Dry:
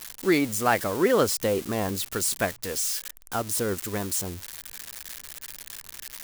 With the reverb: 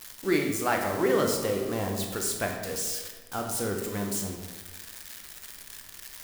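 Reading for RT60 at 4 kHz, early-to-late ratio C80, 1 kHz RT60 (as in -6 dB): 0.85 s, 6.0 dB, 1.3 s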